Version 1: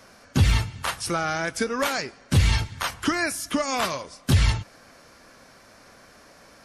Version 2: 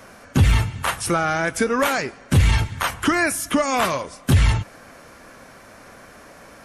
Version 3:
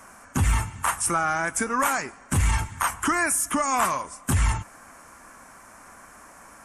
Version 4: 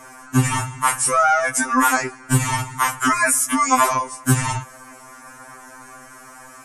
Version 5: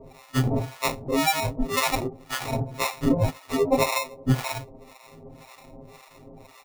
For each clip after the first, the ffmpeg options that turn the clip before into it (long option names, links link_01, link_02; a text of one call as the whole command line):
ffmpeg -i in.wav -filter_complex "[0:a]asplit=2[link_01][link_02];[link_02]alimiter=limit=-19dB:level=0:latency=1,volume=0dB[link_03];[link_01][link_03]amix=inputs=2:normalize=0,equalizer=frequency=4800:width_type=o:width=0.87:gain=-8,acontrast=22,volume=-3.5dB" out.wav
ffmpeg -i in.wav -af "equalizer=frequency=125:width_type=o:width=1:gain=-6,equalizer=frequency=500:width_type=o:width=1:gain=-8,equalizer=frequency=1000:width_type=o:width=1:gain=7,equalizer=frequency=4000:width_type=o:width=1:gain=-11,equalizer=frequency=8000:width_type=o:width=1:gain=11,volume=-4dB" out.wav
ffmpeg -i in.wav -af "afftfilt=real='re*2.45*eq(mod(b,6),0)':imag='im*2.45*eq(mod(b,6),0)':win_size=2048:overlap=0.75,volume=8.5dB" out.wav
ffmpeg -i in.wav -filter_complex "[0:a]aresample=8000,aresample=44100,acrusher=samples=28:mix=1:aa=0.000001,acrossover=split=740[link_01][link_02];[link_01]aeval=exprs='val(0)*(1-1/2+1/2*cos(2*PI*1.9*n/s))':channel_layout=same[link_03];[link_02]aeval=exprs='val(0)*(1-1/2-1/2*cos(2*PI*1.9*n/s))':channel_layout=same[link_04];[link_03][link_04]amix=inputs=2:normalize=0" out.wav